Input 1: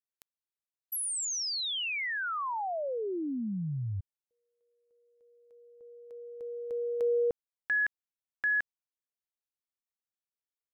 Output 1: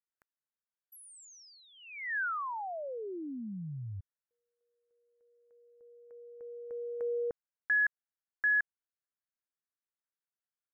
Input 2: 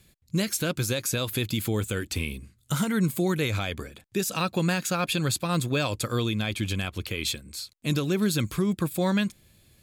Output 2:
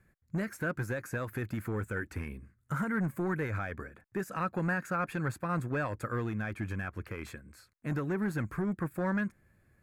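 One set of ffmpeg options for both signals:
-af "volume=10.6,asoftclip=hard,volume=0.0944,highshelf=f=2400:t=q:w=3:g=-13,volume=0.473"

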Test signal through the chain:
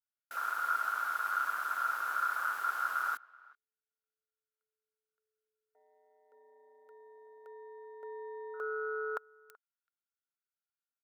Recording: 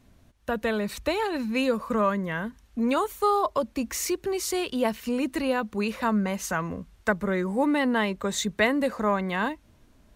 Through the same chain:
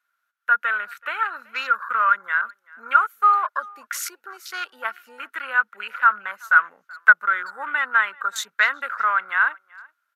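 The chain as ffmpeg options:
-filter_complex "[0:a]afwtdn=0.0158,highpass=f=1400:t=q:w=15,equalizer=f=12000:w=3.4:g=11,asplit=2[s0][s1];[s1]adelay=380,highpass=300,lowpass=3400,asoftclip=type=hard:threshold=0.299,volume=0.0631[s2];[s0][s2]amix=inputs=2:normalize=0"

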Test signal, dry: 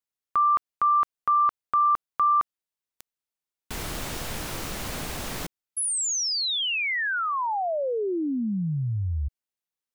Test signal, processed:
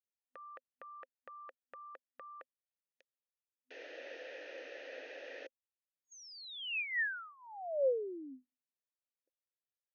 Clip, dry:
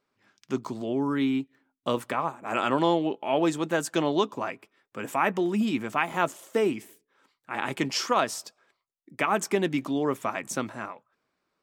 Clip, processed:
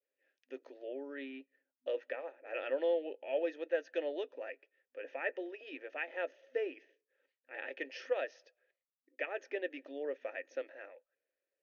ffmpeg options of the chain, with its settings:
-filter_complex "[0:a]asplit=3[s0][s1][s2];[s0]bandpass=f=530:t=q:w=8,volume=1[s3];[s1]bandpass=f=1840:t=q:w=8,volume=0.501[s4];[s2]bandpass=f=2480:t=q:w=8,volume=0.355[s5];[s3][s4][s5]amix=inputs=3:normalize=0,adynamicequalizer=threshold=0.00251:dfrequency=1300:dqfactor=0.79:tfrequency=1300:tqfactor=0.79:attack=5:release=100:ratio=0.375:range=2:mode=boostabove:tftype=bell,afftfilt=real='re*between(b*sr/4096,250,6600)':imag='im*between(b*sr/4096,250,6600)':win_size=4096:overlap=0.75,volume=0.794"

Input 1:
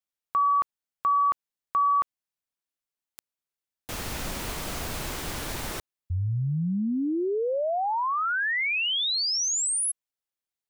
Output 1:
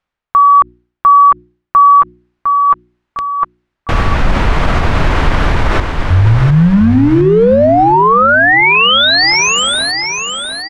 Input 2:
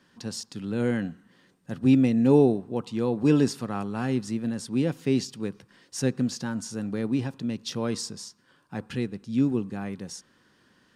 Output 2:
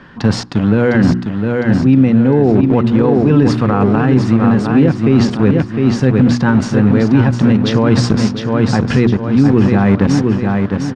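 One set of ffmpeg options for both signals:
-filter_complex "[0:a]equalizer=f=410:w=0.31:g=-10.5,asplit=2[s0][s1];[s1]acrusher=bits=6:mix=0:aa=0.000001,volume=0.596[s2];[s0][s2]amix=inputs=2:normalize=0,lowpass=1400,bandreject=f=60.13:t=h:w=4,bandreject=f=120.26:t=h:w=4,bandreject=f=180.39:t=h:w=4,bandreject=f=240.52:t=h:w=4,bandreject=f=300.65:t=h:w=4,bandreject=f=360.78:t=h:w=4,areverse,acompressor=threshold=0.0112:ratio=8:attack=62:release=838:knee=6:detection=peak,areverse,aecho=1:1:706|1412|2118|2824|3530:0.473|0.213|0.0958|0.0431|0.0194,alimiter=level_in=50.1:limit=0.891:release=50:level=0:latency=1,volume=0.891"

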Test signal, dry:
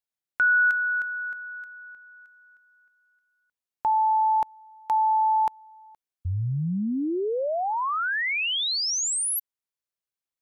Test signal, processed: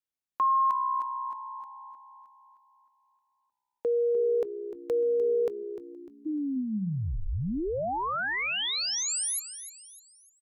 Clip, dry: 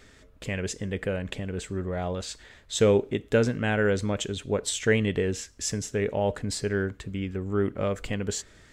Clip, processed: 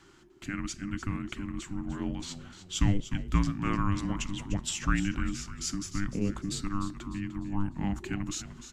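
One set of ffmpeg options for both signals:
-filter_complex "[0:a]afreqshift=-400,asplit=5[s0][s1][s2][s3][s4];[s1]adelay=300,afreqshift=-63,volume=0.251[s5];[s2]adelay=600,afreqshift=-126,volume=0.0977[s6];[s3]adelay=900,afreqshift=-189,volume=0.038[s7];[s4]adelay=1200,afreqshift=-252,volume=0.015[s8];[s0][s5][s6][s7][s8]amix=inputs=5:normalize=0,volume=0.631"

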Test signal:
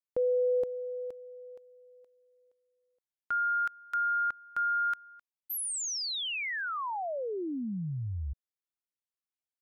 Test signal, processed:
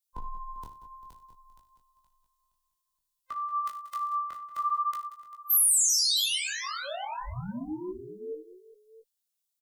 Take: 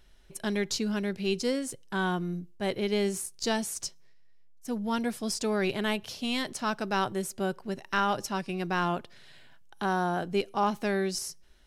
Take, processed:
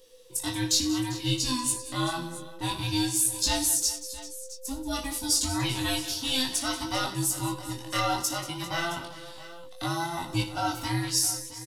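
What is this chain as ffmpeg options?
-filter_complex "[0:a]afftfilt=real='real(if(between(b,1,1008),(2*floor((b-1)/24)+1)*24-b,b),0)':imag='imag(if(between(b,1,1008),(2*floor((b-1)/24)+1)*24-b,b),0)*if(between(b,1,1008),-1,1)':win_size=2048:overlap=0.75,acrossover=split=190[s0][s1];[s1]aexciter=amount=2.8:drive=7.6:freq=3100[s2];[s0][s2]amix=inputs=2:normalize=0,flanger=delay=19:depth=6.9:speed=0.58,asplit=2[s3][s4];[s4]adelay=16,volume=0.447[s5];[s3][s5]amix=inputs=2:normalize=0,aecho=1:1:58|96|182|188|395|668:0.237|0.141|0.126|0.126|0.133|0.15"

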